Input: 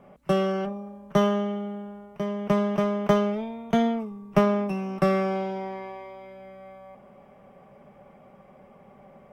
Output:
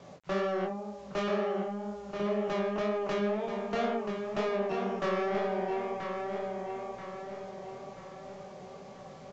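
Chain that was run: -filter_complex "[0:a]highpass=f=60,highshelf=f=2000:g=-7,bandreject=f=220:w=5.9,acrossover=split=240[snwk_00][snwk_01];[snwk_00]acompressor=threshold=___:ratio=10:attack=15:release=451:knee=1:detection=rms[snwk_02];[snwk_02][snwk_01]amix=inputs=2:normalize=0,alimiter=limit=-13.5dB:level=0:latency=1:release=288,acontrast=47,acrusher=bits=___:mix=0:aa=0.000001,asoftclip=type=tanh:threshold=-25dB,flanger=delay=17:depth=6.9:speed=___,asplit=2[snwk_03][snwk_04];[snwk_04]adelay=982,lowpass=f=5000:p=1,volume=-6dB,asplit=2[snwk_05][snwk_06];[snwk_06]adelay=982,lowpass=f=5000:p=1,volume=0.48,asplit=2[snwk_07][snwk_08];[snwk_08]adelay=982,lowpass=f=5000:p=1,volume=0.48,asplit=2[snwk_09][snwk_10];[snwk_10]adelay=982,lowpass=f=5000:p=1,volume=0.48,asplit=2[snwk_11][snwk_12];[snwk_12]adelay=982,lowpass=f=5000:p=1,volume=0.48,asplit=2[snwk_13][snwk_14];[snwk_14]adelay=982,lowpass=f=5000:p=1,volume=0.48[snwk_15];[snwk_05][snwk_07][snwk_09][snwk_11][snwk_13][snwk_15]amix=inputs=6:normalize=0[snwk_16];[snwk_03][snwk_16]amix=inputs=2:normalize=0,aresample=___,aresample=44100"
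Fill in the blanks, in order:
-43dB, 8, 2, 16000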